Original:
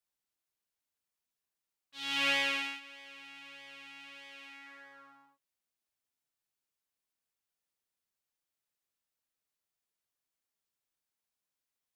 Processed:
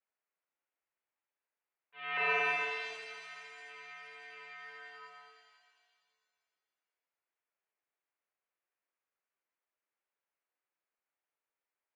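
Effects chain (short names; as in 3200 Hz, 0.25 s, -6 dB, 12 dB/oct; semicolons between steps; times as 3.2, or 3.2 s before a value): 2.17–2.9 sample sorter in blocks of 16 samples; mistuned SSB -110 Hz 470–2600 Hz; shimmer reverb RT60 2.1 s, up +7 st, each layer -8 dB, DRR 4.5 dB; gain +1.5 dB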